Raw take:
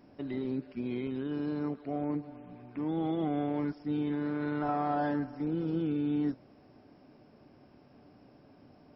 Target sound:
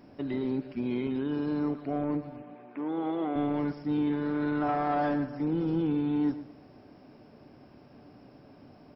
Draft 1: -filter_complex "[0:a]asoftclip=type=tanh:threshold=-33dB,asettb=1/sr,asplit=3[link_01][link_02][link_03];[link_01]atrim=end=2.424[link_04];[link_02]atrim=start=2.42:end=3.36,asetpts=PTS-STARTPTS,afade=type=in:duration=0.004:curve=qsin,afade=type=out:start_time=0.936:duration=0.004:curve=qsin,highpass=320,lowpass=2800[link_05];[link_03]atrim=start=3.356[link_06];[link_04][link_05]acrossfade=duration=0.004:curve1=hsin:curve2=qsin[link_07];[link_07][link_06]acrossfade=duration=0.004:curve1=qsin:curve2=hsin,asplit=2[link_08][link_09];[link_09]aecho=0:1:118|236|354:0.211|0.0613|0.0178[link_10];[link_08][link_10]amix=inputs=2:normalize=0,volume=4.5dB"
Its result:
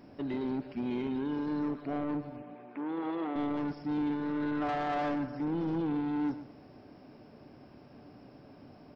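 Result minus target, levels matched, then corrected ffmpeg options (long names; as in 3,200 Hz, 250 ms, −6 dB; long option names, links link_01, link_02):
soft clipping: distortion +10 dB
-filter_complex "[0:a]asoftclip=type=tanh:threshold=-24.5dB,asettb=1/sr,asplit=3[link_01][link_02][link_03];[link_01]atrim=end=2.424[link_04];[link_02]atrim=start=2.42:end=3.36,asetpts=PTS-STARTPTS,afade=type=in:duration=0.004:curve=qsin,afade=type=out:start_time=0.936:duration=0.004:curve=qsin,highpass=320,lowpass=2800[link_05];[link_03]atrim=start=3.356[link_06];[link_04][link_05]acrossfade=duration=0.004:curve1=hsin:curve2=qsin[link_07];[link_07][link_06]acrossfade=duration=0.004:curve1=qsin:curve2=hsin,asplit=2[link_08][link_09];[link_09]aecho=0:1:118|236|354:0.211|0.0613|0.0178[link_10];[link_08][link_10]amix=inputs=2:normalize=0,volume=4.5dB"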